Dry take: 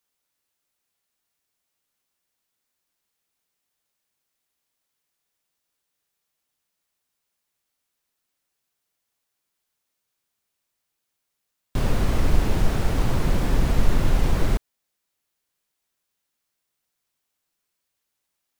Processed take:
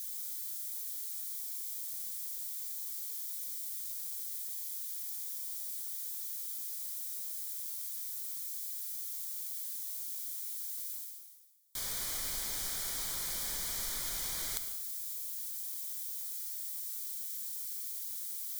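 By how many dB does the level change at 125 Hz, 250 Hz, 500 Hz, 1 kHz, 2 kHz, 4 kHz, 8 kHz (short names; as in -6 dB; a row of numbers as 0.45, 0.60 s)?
-31.0, -28.5, -23.0, -17.0, -11.0, -1.0, +8.5 dB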